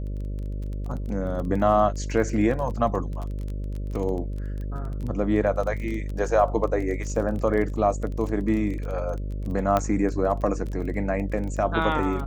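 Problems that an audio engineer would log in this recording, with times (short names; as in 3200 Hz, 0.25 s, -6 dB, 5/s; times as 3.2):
buzz 50 Hz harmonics 12 -30 dBFS
crackle 20/s -31 dBFS
9.77 pop -10 dBFS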